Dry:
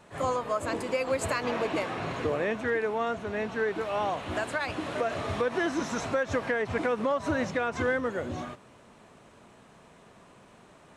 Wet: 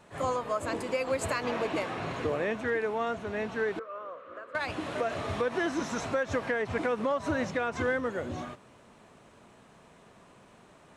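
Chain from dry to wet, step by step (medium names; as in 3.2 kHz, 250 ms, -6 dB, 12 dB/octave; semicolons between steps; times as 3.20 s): 3.79–4.55 s: two resonant band-passes 800 Hz, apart 1.2 oct; trim -1.5 dB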